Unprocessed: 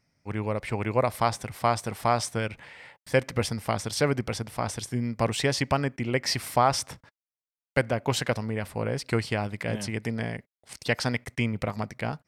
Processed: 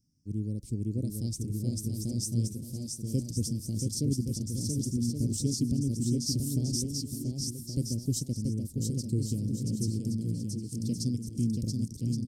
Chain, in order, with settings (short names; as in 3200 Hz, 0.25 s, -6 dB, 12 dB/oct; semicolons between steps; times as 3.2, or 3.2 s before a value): Chebyshev band-stop 290–5900 Hz, order 3; bell 730 Hz -8 dB 0.23 oct; bouncing-ball echo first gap 0.68 s, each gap 0.65×, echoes 5